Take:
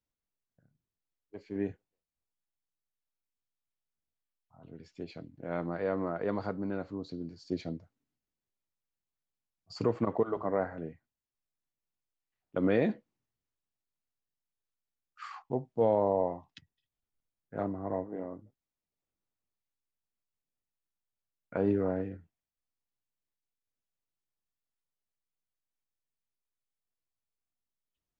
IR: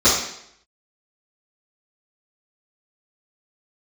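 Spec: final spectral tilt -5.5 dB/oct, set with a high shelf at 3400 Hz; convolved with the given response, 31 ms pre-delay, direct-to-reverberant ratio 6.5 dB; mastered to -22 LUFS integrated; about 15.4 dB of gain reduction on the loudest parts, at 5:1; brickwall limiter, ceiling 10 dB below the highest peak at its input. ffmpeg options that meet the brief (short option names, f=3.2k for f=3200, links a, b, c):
-filter_complex "[0:a]highshelf=f=3.4k:g=4,acompressor=threshold=-40dB:ratio=5,alimiter=level_in=8.5dB:limit=-24dB:level=0:latency=1,volume=-8.5dB,asplit=2[a][b];[1:a]atrim=start_sample=2205,adelay=31[c];[b][c]afir=irnorm=-1:irlink=0,volume=-28.5dB[d];[a][d]amix=inputs=2:normalize=0,volume=23.5dB"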